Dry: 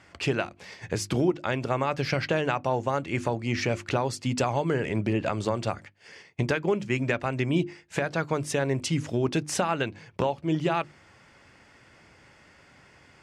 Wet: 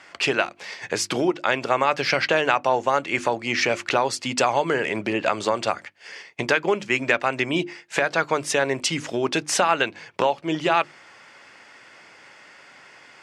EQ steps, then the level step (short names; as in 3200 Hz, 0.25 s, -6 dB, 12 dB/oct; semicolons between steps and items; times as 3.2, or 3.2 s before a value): weighting filter A; +8.0 dB